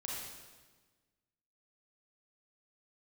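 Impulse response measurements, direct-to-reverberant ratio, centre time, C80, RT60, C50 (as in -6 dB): -4.5 dB, 89 ms, 1.5 dB, 1.4 s, -1.5 dB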